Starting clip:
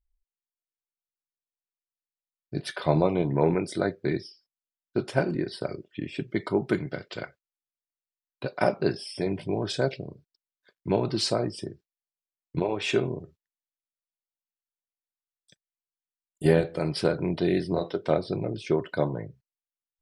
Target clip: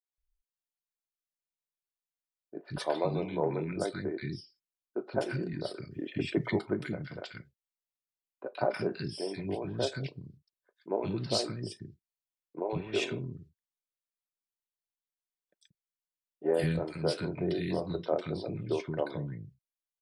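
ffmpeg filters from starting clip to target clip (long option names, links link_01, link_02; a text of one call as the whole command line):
ffmpeg -i in.wav -filter_complex "[0:a]asettb=1/sr,asplit=3[link_01][link_02][link_03];[link_01]atrim=end=2.594[link_04];[link_02]atrim=start=2.59:end=3.58,asetpts=PTS-STARTPTS,afade=type=in:duration=0.004:curve=qsin,afade=type=out:start_time=0.986:duration=0.004:curve=qsin,lowshelf=frequency=120:gain=-12[link_05];[link_03]atrim=start=3.576[link_06];[link_04][link_05]acrossfade=duration=0.004:curve1=hsin:curve2=qsin[link_07];[link_07][link_06]acrossfade=duration=0.004:curve1=qsin:curve2=hsin,asettb=1/sr,asplit=3[link_08][link_09][link_10];[link_08]atrim=end=5.784[link_11];[link_09]atrim=start=5.78:end=6.46,asetpts=PTS-STARTPTS,afade=type=in:duration=0.004:curve=qsin,afade=type=out:start_time=0.676:duration=0.004:curve=qsin,acontrast=70[link_12];[link_10]atrim=start=6.456[link_13];[link_11][link_12]acrossfade=duration=0.004:curve1=hsin:curve2=qsin[link_14];[link_14][link_13]acrossfade=duration=0.004:curve1=qsin:curve2=hsin,acrossover=split=280|1400[link_15][link_16][link_17];[link_17]adelay=130[link_18];[link_15]adelay=180[link_19];[link_19][link_16][link_18]amix=inputs=3:normalize=0,volume=-4.5dB" out.wav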